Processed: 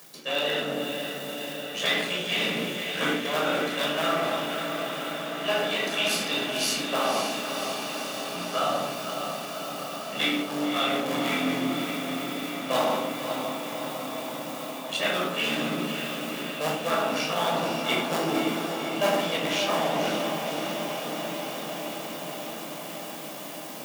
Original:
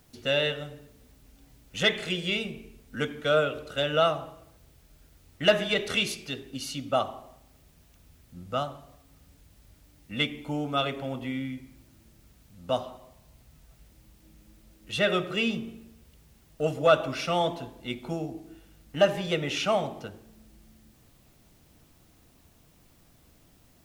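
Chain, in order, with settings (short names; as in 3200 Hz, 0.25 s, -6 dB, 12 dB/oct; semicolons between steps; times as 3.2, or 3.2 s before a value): cycle switcher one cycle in 3, muted; shoebox room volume 1000 m³, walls furnished, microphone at 5.7 m; reverse; compressor 6:1, threshold -32 dBFS, peak gain reduction 21 dB; reverse; HPF 200 Hz 24 dB/oct; tilt +1.5 dB/oct; vocal rider within 3 dB 0.5 s; on a send: diffused feedback echo 0.543 s, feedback 80%, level -6.5 dB; on the sum: gain +8.5 dB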